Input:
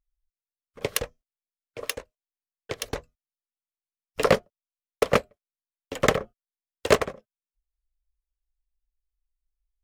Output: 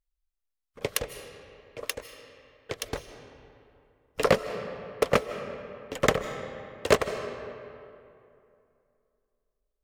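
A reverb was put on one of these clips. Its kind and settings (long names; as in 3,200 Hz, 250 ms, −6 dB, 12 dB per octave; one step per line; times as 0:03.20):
comb and all-pass reverb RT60 2.7 s, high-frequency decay 0.6×, pre-delay 115 ms, DRR 10 dB
level −2 dB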